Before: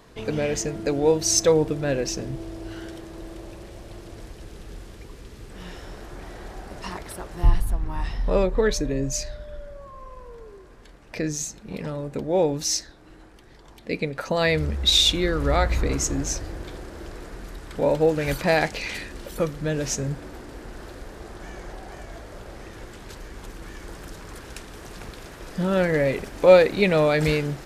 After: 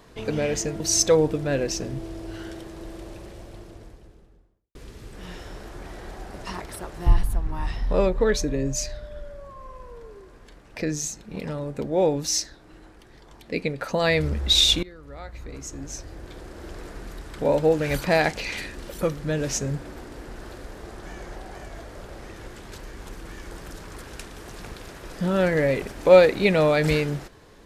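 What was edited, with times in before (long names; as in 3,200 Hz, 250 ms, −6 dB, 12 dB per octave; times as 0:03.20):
0:00.80–0:01.17: remove
0:03.52–0:05.12: fade out and dull
0:15.20–0:17.15: fade in quadratic, from −21.5 dB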